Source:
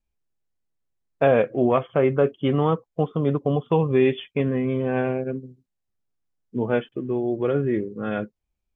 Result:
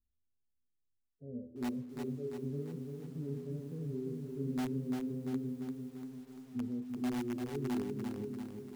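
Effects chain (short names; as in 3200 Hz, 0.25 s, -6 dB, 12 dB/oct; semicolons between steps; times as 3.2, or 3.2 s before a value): reverse; compressor 12:1, threshold -27 dBFS, peak gain reduction 14.5 dB; reverse; limiter -25.5 dBFS, peak gain reduction 8.5 dB; harmonic-percussive split percussive -17 dB; inverse Chebyshev low-pass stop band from 950 Hz, stop band 50 dB; resonator 83 Hz, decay 0.72 s, harmonics odd, mix 90%; diffused feedback echo 0.505 s, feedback 60%, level -16 dB; in parallel at -7 dB: wrapped overs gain 43 dB; on the sum: lo-fi delay 0.344 s, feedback 55%, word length 12-bit, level -5 dB; gain +10.5 dB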